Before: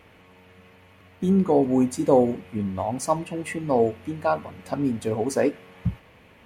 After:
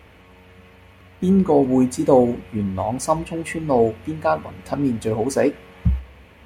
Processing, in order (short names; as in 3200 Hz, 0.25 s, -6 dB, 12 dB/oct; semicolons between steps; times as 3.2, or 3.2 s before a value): bell 65 Hz +15 dB 0.4 oct; gain +3.5 dB